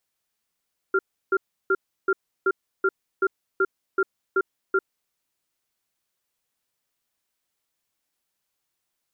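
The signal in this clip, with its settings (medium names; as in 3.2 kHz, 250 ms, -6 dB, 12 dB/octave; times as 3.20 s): cadence 384 Hz, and 1.39 kHz, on 0.05 s, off 0.33 s, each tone -20 dBFS 4.07 s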